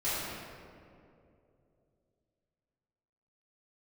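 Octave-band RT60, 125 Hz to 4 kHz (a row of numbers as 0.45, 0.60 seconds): 3.6, 3.1, 3.2, 2.2, 1.7, 1.2 seconds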